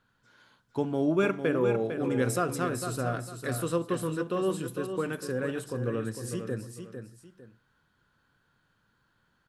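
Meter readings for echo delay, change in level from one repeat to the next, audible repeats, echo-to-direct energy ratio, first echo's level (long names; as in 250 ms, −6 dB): 452 ms, −10.0 dB, 2, −7.5 dB, −8.0 dB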